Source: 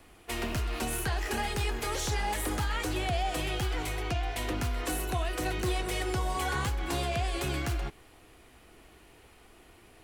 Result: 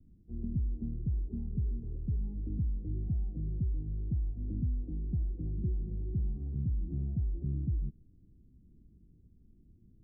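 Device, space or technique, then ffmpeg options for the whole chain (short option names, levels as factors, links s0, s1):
the neighbour's flat through the wall: -af "lowpass=f=230:w=0.5412,lowpass=f=230:w=1.3066,equalizer=f=180:t=o:w=0.76:g=5"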